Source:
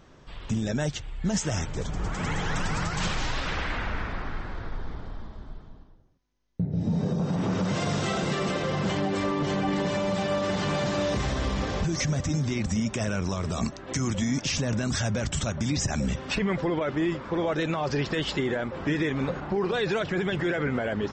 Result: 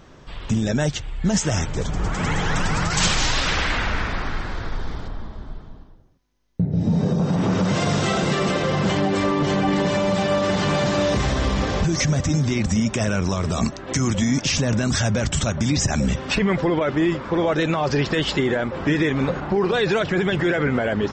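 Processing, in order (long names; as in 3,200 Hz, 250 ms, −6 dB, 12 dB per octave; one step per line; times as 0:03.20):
0:02.90–0:05.08: high-shelf EQ 3,800 Hz +11.5 dB
level +6.5 dB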